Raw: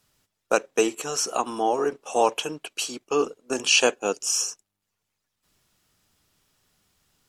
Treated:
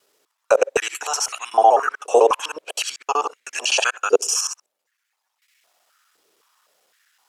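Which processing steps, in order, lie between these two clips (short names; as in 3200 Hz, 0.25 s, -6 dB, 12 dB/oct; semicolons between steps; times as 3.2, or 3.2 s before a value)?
local time reversal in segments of 63 ms; maximiser +11.5 dB; stepped high-pass 3.9 Hz 430–2100 Hz; gain -8 dB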